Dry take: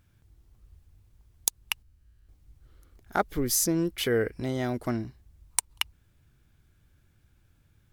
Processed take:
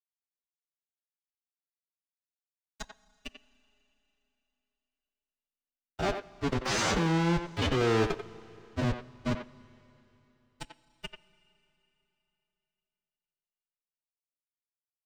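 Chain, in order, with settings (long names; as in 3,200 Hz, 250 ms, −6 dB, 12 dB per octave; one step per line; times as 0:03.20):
comparator with hysteresis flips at −25 dBFS
leveller curve on the samples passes 5
high-pass filter 57 Hz 6 dB per octave
phase-vocoder stretch with locked phases 1.9×
Bessel low-pass filter 4,800 Hz, order 8
dead-zone distortion −54.5 dBFS
transient designer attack −2 dB, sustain +8 dB
far-end echo of a speakerphone 90 ms, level −7 dB
four-comb reverb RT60 3.4 s, combs from 28 ms, DRR 18.5 dB
level +4 dB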